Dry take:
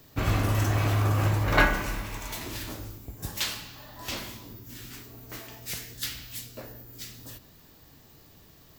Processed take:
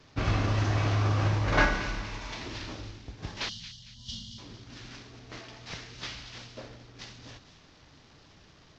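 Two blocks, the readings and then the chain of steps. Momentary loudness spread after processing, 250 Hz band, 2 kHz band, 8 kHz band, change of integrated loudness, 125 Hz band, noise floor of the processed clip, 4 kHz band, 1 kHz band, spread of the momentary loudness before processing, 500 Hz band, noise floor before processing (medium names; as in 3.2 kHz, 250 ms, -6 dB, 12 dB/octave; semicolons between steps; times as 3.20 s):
20 LU, -2.0 dB, -2.5 dB, -8.5 dB, -2.0 dB, -2.0 dB, -57 dBFS, -2.0 dB, -2.0 dB, 19 LU, -2.0 dB, -55 dBFS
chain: CVSD coder 32 kbps; time-frequency box 3.49–4.38 s, 250–2800 Hz -26 dB; feedback echo behind a high-pass 227 ms, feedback 40%, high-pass 2.4 kHz, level -10 dB; trim -1.5 dB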